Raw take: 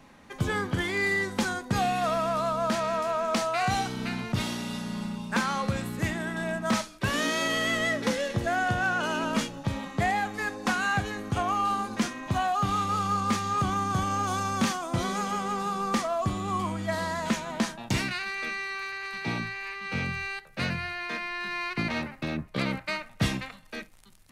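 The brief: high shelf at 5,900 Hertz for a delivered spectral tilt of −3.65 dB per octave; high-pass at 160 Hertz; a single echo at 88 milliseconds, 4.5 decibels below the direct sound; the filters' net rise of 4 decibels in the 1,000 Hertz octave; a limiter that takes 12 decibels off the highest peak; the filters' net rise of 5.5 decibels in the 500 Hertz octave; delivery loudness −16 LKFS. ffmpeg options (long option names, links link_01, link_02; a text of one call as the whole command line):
ffmpeg -i in.wav -af "highpass=160,equalizer=frequency=500:width_type=o:gain=6.5,equalizer=frequency=1000:width_type=o:gain=3,highshelf=frequency=5900:gain=5,alimiter=limit=-21dB:level=0:latency=1,aecho=1:1:88:0.596,volume=13dB" out.wav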